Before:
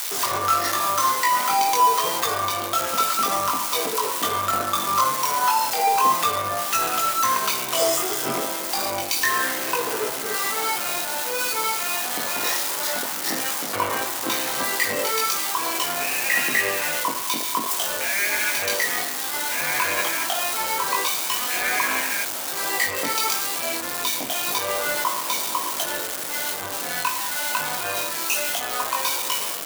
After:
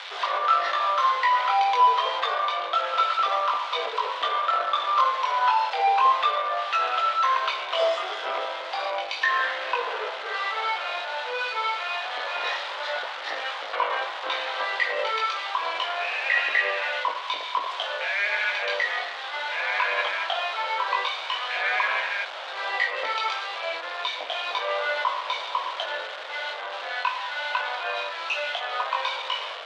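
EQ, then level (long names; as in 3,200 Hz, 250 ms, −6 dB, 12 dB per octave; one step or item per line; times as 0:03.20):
Chebyshev band-pass filter 530–3,600 Hz, order 3
0.0 dB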